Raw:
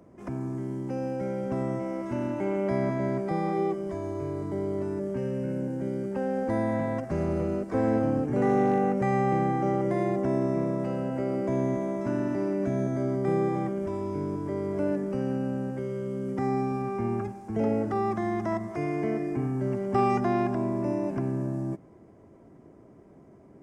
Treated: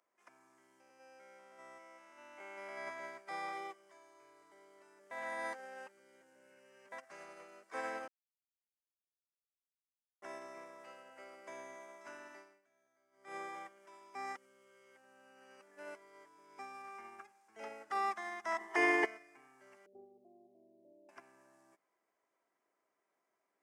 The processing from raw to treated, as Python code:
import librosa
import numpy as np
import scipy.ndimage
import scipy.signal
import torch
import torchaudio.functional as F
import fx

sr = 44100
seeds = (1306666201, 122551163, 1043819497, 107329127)

y = fx.spec_steps(x, sr, hold_ms=200, at=(0.8, 2.88))
y = fx.small_body(y, sr, hz=(380.0, 840.0, 1800.0, 3000.0), ring_ms=20, db=15, at=(18.58, 19.05))
y = fx.steep_lowpass(y, sr, hz=580.0, slope=48, at=(19.86, 21.09))
y = fx.edit(y, sr, fx.reverse_span(start_s=5.11, length_s=1.81),
    fx.silence(start_s=8.08, length_s=2.14),
    fx.fade_down_up(start_s=12.37, length_s=0.99, db=-18.5, fade_s=0.25),
    fx.reverse_span(start_s=14.15, length_s=2.44), tone=tone)
y = scipy.signal.sosfilt(scipy.signal.butter(2, 1400.0, 'highpass', fs=sr, output='sos'), y)
y = fx.upward_expand(y, sr, threshold_db=-50.0, expansion=2.5)
y = y * librosa.db_to_amplitude(8.5)